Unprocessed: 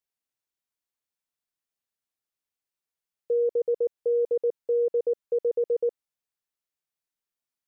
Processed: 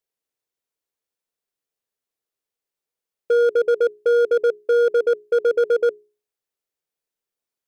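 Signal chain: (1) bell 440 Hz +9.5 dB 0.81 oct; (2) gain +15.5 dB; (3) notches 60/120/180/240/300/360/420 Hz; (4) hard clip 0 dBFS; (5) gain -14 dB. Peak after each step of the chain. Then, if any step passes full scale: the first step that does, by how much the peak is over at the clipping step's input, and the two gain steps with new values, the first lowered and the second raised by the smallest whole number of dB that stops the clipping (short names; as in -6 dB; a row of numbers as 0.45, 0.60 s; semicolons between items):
-11.0, +4.5, +5.0, 0.0, -14.0 dBFS; step 2, 5.0 dB; step 2 +10.5 dB, step 5 -9 dB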